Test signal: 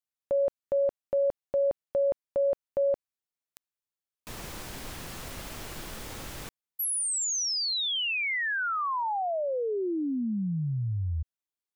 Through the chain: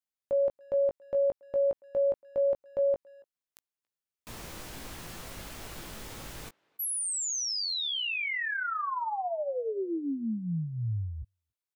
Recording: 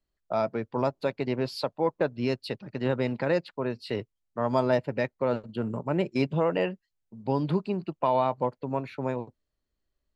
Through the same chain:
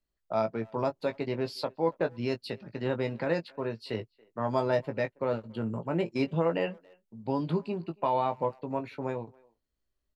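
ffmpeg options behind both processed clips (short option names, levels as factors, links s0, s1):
-filter_complex "[0:a]asplit=2[s0][s1];[s1]adelay=18,volume=0.447[s2];[s0][s2]amix=inputs=2:normalize=0,asplit=2[s3][s4];[s4]adelay=280,highpass=300,lowpass=3400,asoftclip=type=hard:threshold=0.0891,volume=0.0501[s5];[s3][s5]amix=inputs=2:normalize=0,volume=0.668"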